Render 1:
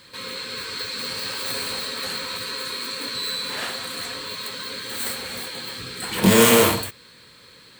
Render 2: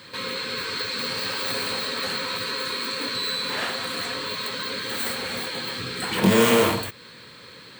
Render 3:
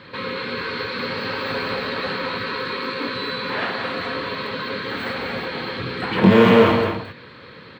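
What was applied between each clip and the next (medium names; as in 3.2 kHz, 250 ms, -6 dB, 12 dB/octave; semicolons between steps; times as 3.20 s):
high-pass 86 Hz; peaking EQ 12 kHz -8.5 dB 1.8 oct; compression 1.5:1, threshold -35 dBFS, peak gain reduction 9 dB; trim +6 dB
distance through air 340 m; on a send: delay 219 ms -7 dB; on the sum: trim +6 dB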